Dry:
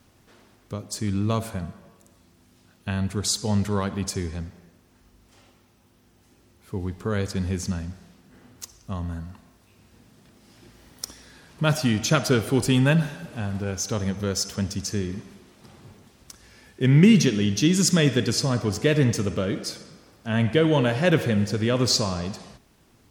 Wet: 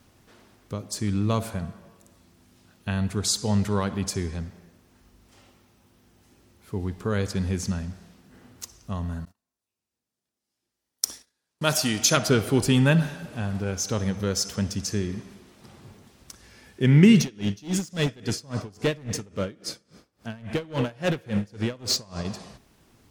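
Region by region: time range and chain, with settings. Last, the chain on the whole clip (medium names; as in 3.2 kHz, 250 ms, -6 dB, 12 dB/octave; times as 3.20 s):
9.25–12.17 s: tone controls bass -8 dB, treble +9 dB + gate -44 dBFS, range -32 dB
17.20–22.25 s: overload inside the chain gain 17.5 dB + logarithmic tremolo 3.6 Hz, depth 25 dB
whole clip: none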